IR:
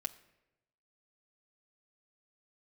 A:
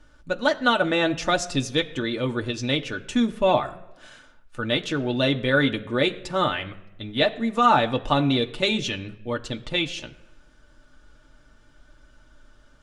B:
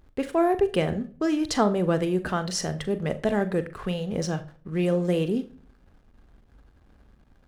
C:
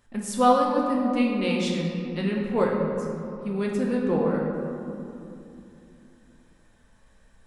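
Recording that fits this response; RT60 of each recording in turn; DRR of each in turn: A; not exponential, 0.45 s, 2.8 s; 2.5, 11.0, -2.0 dB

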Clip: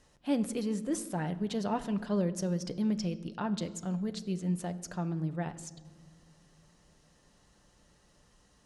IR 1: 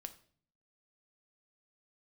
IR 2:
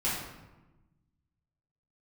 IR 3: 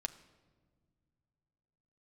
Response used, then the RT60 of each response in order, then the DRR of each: 3; 0.50 s, 1.1 s, not exponential; 8.5, -10.5, 8.0 dB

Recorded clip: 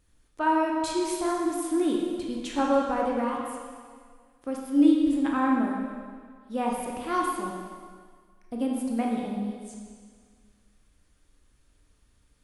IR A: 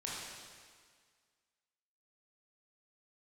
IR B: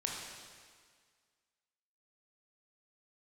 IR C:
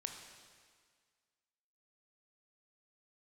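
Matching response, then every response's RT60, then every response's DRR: B; 1.8, 1.8, 1.8 s; -6.0, -2.0, 3.5 dB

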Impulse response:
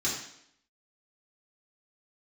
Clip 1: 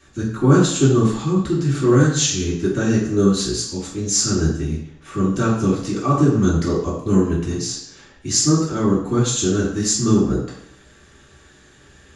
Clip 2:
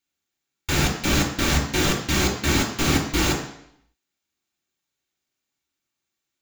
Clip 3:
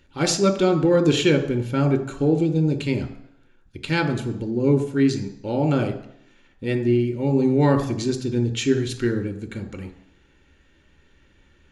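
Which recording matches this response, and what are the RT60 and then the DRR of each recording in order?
1; 0.70, 0.70, 0.70 s; -7.0, 1.0, 7.5 dB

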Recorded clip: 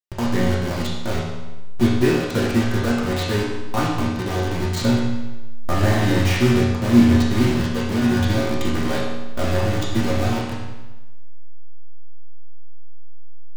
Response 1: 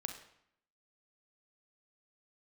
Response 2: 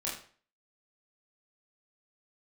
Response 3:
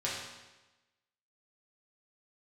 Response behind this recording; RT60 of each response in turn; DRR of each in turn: 3; 0.70, 0.45, 1.1 s; 5.0, -6.0, -7.0 dB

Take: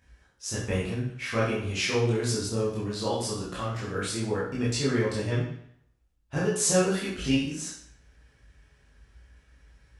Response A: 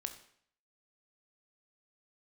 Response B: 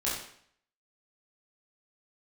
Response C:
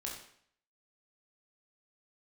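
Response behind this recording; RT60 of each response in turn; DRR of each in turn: B; 0.60, 0.60, 0.60 s; 7.0, -7.5, -2.5 dB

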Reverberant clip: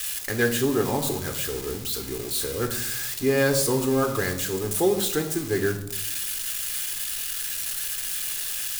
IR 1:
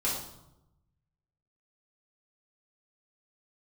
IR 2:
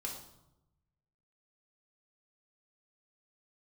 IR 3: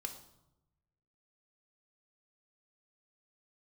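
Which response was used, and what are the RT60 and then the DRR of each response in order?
3; 0.90, 0.90, 0.90 s; -7.5, -1.5, 5.0 dB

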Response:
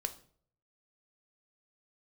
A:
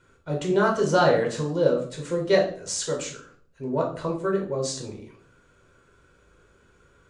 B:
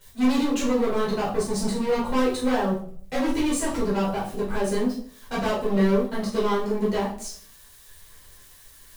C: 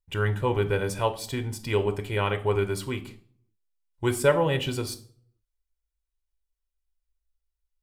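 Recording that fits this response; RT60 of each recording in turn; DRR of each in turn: C; 0.55, 0.55, 0.55 s; -1.0, -8.0, 8.5 dB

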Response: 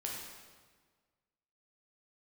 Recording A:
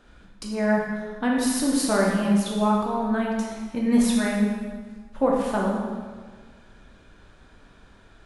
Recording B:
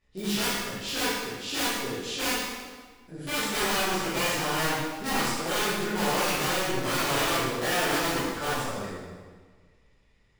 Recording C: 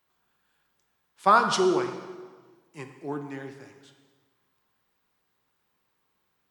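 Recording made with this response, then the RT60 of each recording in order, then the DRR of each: A; 1.5, 1.5, 1.5 s; -3.0, -13.0, 6.5 dB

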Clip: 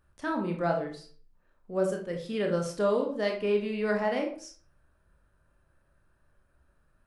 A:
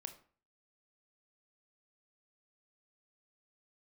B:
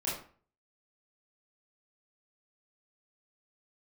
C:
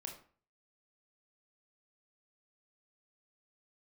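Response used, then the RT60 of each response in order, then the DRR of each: C; 0.45, 0.45, 0.45 s; 7.5, -8.0, 2.0 dB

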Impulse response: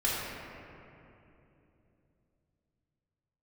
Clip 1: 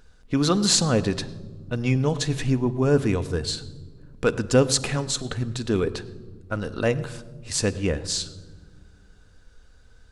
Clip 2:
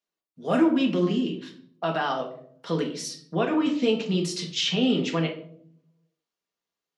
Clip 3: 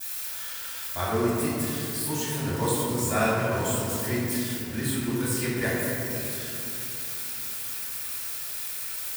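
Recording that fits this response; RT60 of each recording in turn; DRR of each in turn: 3; not exponential, 0.60 s, 3.0 s; 11.0, 0.5, -8.5 dB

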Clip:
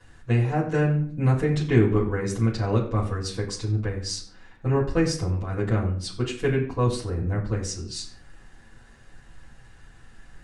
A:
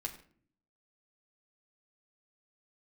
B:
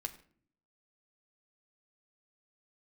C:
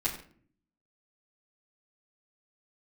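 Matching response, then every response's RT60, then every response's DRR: C; 0.50, 0.55, 0.50 s; 0.5, 5.0, -8.5 dB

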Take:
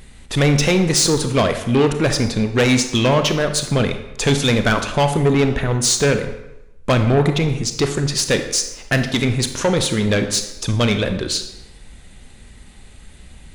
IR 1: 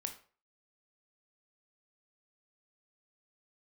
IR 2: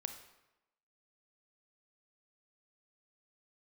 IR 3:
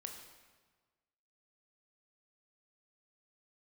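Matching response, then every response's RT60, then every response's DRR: 2; 0.40, 0.95, 1.4 s; 5.0, 7.0, 2.5 dB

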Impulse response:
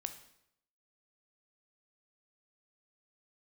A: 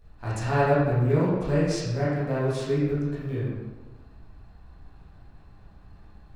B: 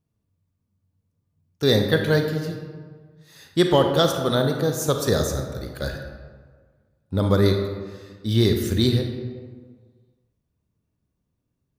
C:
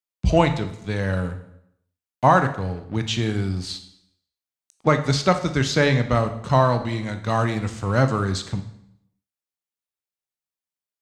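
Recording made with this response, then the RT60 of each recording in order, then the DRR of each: C; 1.2, 1.6, 0.75 s; -9.5, 4.0, 8.0 dB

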